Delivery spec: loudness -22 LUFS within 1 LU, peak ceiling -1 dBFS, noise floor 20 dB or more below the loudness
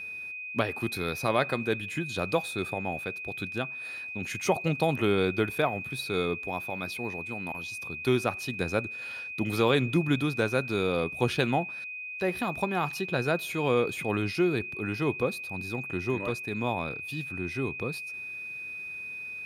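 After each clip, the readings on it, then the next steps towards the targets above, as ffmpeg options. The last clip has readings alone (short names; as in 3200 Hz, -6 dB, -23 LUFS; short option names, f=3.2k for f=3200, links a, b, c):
steady tone 2500 Hz; tone level -36 dBFS; loudness -30.0 LUFS; peak -11.0 dBFS; loudness target -22.0 LUFS
-> -af "bandreject=f=2.5k:w=30"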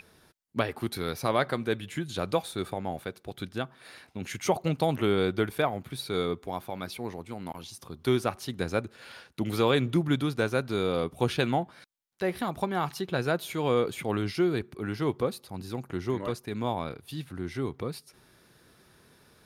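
steady tone none; loudness -30.5 LUFS; peak -11.5 dBFS; loudness target -22.0 LUFS
-> -af "volume=8.5dB"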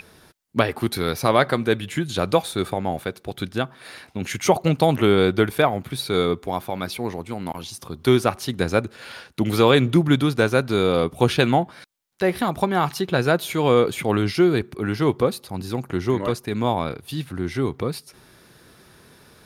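loudness -22.0 LUFS; peak -3.0 dBFS; noise floor -53 dBFS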